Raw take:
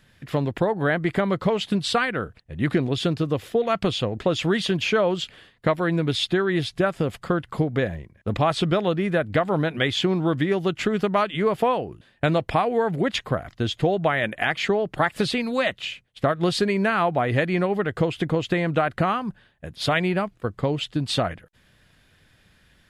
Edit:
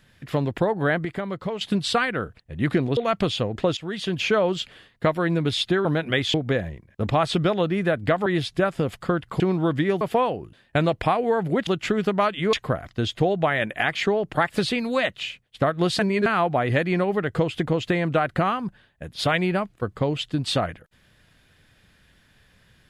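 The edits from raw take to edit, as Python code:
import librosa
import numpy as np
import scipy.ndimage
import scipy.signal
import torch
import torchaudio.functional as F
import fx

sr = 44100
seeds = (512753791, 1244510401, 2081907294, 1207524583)

y = fx.edit(x, sr, fx.clip_gain(start_s=1.05, length_s=0.56, db=-7.0),
    fx.cut(start_s=2.97, length_s=0.62),
    fx.fade_in_from(start_s=4.39, length_s=0.5, floor_db=-17.5),
    fx.swap(start_s=6.47, length_s=1.14, other_s=9.53, other_length_s=0.49),
    fx.move(start_s=10.63, length_s=0.86, to_s=13.15),
    fx.reverse_span(start_s=16.61, length_s=0.27), tone=tone)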